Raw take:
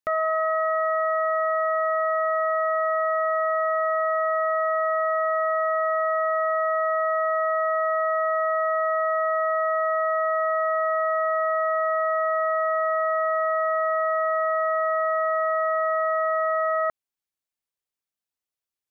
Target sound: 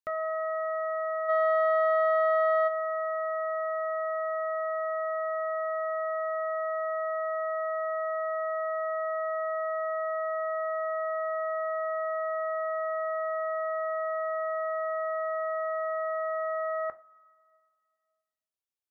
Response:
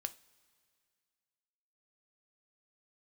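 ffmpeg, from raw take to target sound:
-filter_complex "[0:a]asplit=3[a][b][c];[a]afade=t=out:st=1.28:d=0.02[d];[b]acontrast=83,afade=t=in:st=1.28:d=0.02,afade=t=out:st=2.67:d=0.02[e];[c]afade=t=in:st=2.67:d=0.02[f];[d][e][f]amix=inputs=3:normalize=0[g];[1:a]atrim=start_sample=2205[h];[g][h]afir=irnorm=-1:irlink=0,volume=-6dB"

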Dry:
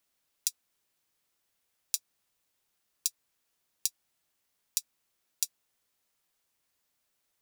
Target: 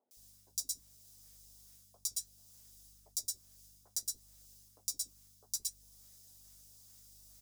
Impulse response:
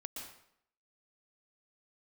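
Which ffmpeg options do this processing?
-filter_complex "[0:a]highshelf=f=3.6k:t=q:w=1.5:g=9.5,bandreject=f=4.3k:w=14,areverse,acompressor=threshold=-31dB:ratio=5,areverse[a];[1:a]atrim=start_sample=2205,afade=t=out:st=0.17:d=0.01,atrim=end_sample=7938[b];[a][b]afir=irnorm=-1:irlink=0,alimiter=level_in=6dB:limit=-24dB:level=0:latency=1:release=489,volume=-6dB,acrossover=split=110|2800[c][d][e];[d]acrusher=samples=23:mix=1:aa=0.000001:lfo=1:lforange=36.8:lforate=2.3[f];[c][f][e]amix=inputs=3:normalize=0,aeval=exprs='val(0)+0.000141*(sin(2*PI*50*n/s)+sin(2*PI*2*50*n/s)/2+sin(2*PI*3*50*n/s)/3+sin(2*PI*4*50*n/s)/4+sin(2*PI*5*50*n/s)/5)':c=same,equalizer=f=160:w=1.2:g=-7.5,acrossover=split=350|1100[g][h][i];[i]adelay=110[j];[g]adelay=170[k];[k][h][j]amix=inputs=3:normalize=0,flanger=delay=7.9:depth=3.6:regen=-61:speed=0.69:shape=triangular,volume=18dB"

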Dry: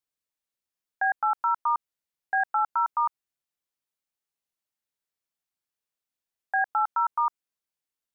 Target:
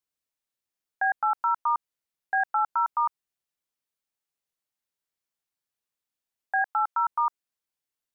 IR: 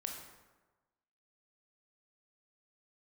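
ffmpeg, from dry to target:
-filter_complex "[0:a]asplit=3[a][b][c];[a]afade=t=out:st=6.62:d=0.02[d];[b]highpass=570,afade=t=in:st=6.62:d=0.02,afade=t=out:st=7.07:d=0.02[e];[c]afade=t=in:st=7.07:d=0.02[f];[d][e][f]amix=inputs=3:normalize=0"

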